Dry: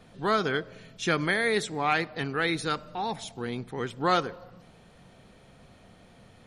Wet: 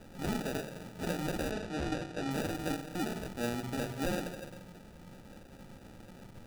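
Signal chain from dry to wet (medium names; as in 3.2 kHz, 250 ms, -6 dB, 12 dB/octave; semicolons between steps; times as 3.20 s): compression 12:1, threshold -33 dBFS, peak gain reduction 15 dB; simulated room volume 2700 m³, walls furnished, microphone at 2.1 m; sample-and-hold 41×; 1.51–2.31 s: low-pass 6.4 kHz 12 dB/octave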